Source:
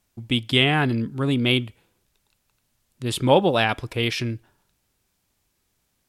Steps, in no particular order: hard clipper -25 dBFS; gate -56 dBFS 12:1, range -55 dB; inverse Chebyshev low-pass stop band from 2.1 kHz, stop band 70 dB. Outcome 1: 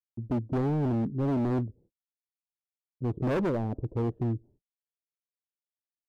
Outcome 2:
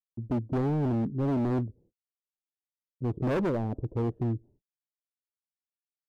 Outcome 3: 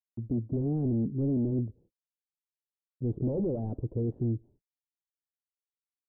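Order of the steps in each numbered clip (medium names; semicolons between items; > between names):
inverse Chebyshev low-pass > hard clipper > gate; inverse Chebyshev low-pass > gate > hard clipper; hard clipper > inverse Chebyshev low-pass > gate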